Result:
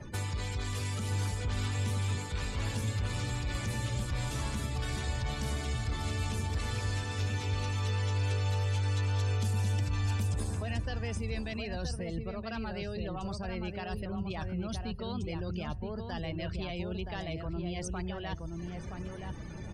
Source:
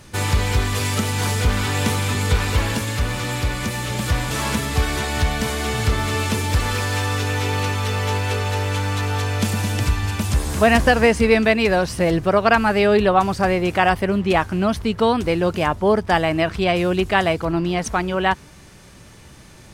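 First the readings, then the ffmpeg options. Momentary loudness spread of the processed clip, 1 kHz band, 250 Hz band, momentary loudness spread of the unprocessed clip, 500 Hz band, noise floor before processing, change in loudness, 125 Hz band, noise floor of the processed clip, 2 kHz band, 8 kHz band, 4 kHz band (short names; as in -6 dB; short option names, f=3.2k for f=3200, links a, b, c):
7 LU, -20.5 dB, -16.0 dB, 7 LU, -20.5 dB, -44 dBFS, -14.5 dB, -9.0 dB, -41 dBFS, -19.0 dB, -14.0 dB, -14.5 dB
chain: -filter_complex "[0:a]areverse,acompressor=threshold=-24dB:ratio=16,areverse,asoftclip=type=tanh:threshold=-21dB,acrossover=split=130|3400[a][b][c];[a]acompressor=threshold=-37dB:ratio=4[d];[b]acompressor=threshold=-44dB:ratio=4[e];[c]acompressor=threshold=-44dB:ratio=4[f];[d][e][f]amix=inputs=3:normalize=0,afftdn=nr=31:nf=-49,asplit=2[g][h];[h]adelay=972,lowpass=f=1.1k:p=1,volume=-3.5dB,asplit=2[i][j];[j]adelay=972,lowpass=f=1.1k:p=1,volume=0.19,asplit=2[k][l];[l]adelay=972,lowpass=f=1.1k:p=1,volume=0.19[m];[g][i][k][m]amix=inputs=4:normalize=0,volume=2.5dB"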